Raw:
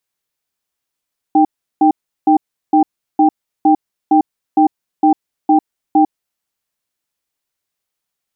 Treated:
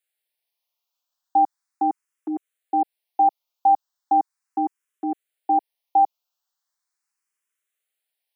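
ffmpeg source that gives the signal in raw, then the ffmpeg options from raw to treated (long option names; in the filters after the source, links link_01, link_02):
-f lavfi -i "aevalsrc='0.335*(sin(2*PI*308*t)+sin(2*PI*788*t))*clip(min(mod(t,0.46),0.1-mod(t,0.46))/0.005,0,1)':duration=5.06:sample_rate=44100"
-filter_complex "[0:a]highpass=630,asplit=2[link_01][link_02];[link_02]afreqshift=0.38[link_03];[link_01][link_03]amix=inputs=2:normalize=1"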